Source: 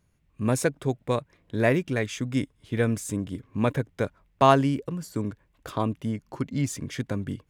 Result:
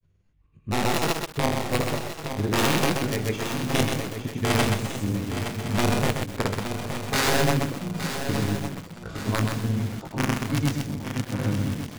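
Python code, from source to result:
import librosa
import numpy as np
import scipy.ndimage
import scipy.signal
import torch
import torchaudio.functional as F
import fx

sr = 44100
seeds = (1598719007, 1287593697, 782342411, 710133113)

p1 = fx.spec_quant(x, sr, step_db=15)
p2 = scipy.signal.sosfilt(scipy.signal.butter(2, 5400.0, 'lowpass', fs=sr, output='sos'), p1)
p3 = fx.low_shelf(p2, sr, hz=200.0, db=6.5)
p4 = (np.mod(10.0 ** (14.0 / 20.0) * p3 + 1.0, 2.0) - 1.0) / 10.0 ** (14.0 / 20.0)
p5 = fx.stretch_grains(p4, sr, factor=1.6, grain_ms=106.0)
p6 = fx.granulator(p5, sr, seeds[0], grain_ms=100.0, per_s=20.0, spray_ms=100.0, spread_st=0)
p7 = p6 + fx.echo_swing(p6, sr, ms=1156, ratio=3, feedback_pct=45, wet_db=-9.0, dry=0)
y = fx.echo_crushed(p7, sr, ms=128, feedback_pct=35, bits=6, wet_db=-4.0)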